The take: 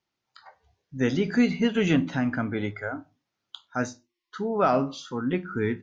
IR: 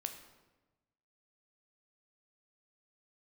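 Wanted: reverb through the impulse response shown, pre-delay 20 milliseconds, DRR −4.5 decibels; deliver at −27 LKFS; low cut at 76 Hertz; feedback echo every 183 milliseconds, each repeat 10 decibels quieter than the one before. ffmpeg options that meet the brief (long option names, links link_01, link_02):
-filter_complex "[0:a]highpass=76,aecho=1:1:183|366|549|732:0.316|0.101|0.0324|0.0104,asplit=2[link_01][link_02];[1:a]atrim=start_sample=2205,adelay=20[link_03];[link_02][link_03]afir=irnorm=-1:irlink=0,volume=6dB[link_04];[link_01][link_04]amix=inputs=2:normalize=0,volume=-7dB"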